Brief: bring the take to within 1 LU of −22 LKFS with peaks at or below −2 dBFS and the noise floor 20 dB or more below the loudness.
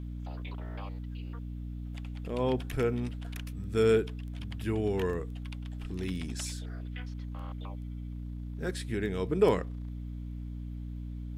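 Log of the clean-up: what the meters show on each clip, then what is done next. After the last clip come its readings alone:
mains hum 60 Hz; hum harmonics up to 300 Hz; level of the hum −36 dBFS; integrated loudness −34.0 LKFS; sample peak −12.5 dBFS; target loudness −22.0 LKFS
→ hum removal 60 Hz, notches 5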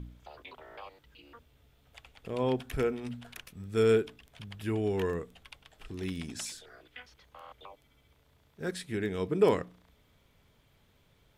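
mains hum none found; integrated loudness −32.0 LKFS; sample peak −13.0 dBFS; target loudness −22.0 LKFS
→ level +10 dB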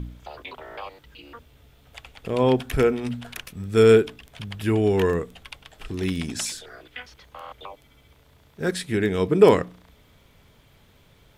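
integrated loudness −22.0 LKFS; sample peak −3.0 dBFS; background noise floor −57 dBFS

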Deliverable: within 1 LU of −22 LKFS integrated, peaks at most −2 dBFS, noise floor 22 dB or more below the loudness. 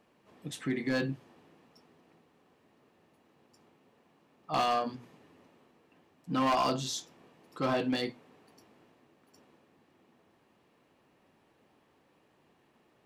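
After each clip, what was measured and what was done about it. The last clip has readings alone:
share of clipped samples 0.7%; peaks flattened at −23.5 dBFS; integrated loudness −32.0 LKFS; sample peak −23.5 dBFS; target loudness −22.0 LKFS
→ clipped peaks rebuilt −23.5 dBFS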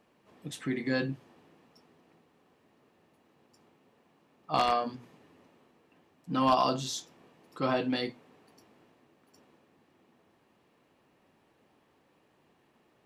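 share of clipped samples 0.0%; integrated loudness −31.0 LKFS; sample peak −14.5 dBFS; target loudness −22.0 LKFS
→ level +9 dB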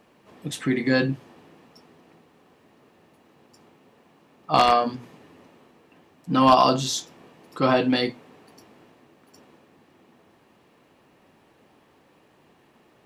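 integrated loudness −22.0 LKFS; sample peak −5.5 dBFS; background noise floor −60 dBFS

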